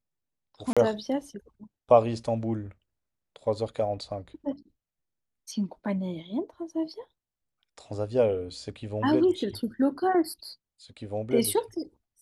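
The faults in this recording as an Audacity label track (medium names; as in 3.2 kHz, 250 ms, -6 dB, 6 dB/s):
0.730000	0.770000	dropout 36 ms
10.440000	10.440000	dropout 4.7 ms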